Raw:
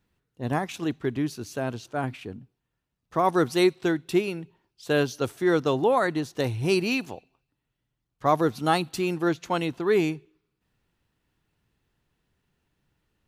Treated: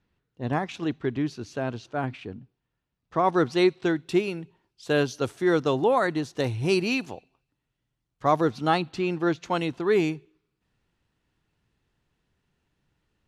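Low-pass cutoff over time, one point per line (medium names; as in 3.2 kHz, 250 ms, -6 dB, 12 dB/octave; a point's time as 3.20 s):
3.65 s 5 kHz
4.33 s 9.3 kHz
8.26 s 9.3 kHz
8.94 s 3.6 kHz
9.63 s 8.6 kHz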